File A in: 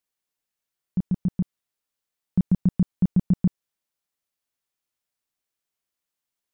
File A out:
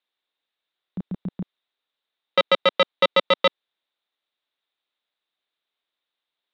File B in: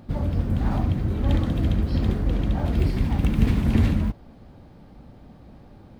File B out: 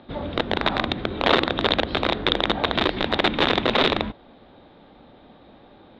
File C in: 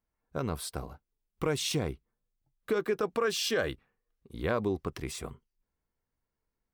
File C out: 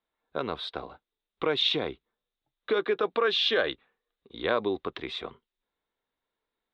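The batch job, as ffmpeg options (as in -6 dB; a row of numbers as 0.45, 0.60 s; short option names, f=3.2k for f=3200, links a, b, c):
-filter_complex "[0:a]aeval=exprs='(mod(5.62*val(0)+1,2)-1)/5.62':c=same,lowpass=f=3.7k:t=q:w=9.5,acrossover=split=270 2700:gain=0.158 1 0.158[a][b][c];[a][b][c]amix=inputs=3:normalize=0,volume=4dB"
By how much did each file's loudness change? +5.0, +1.5, +4.0 LU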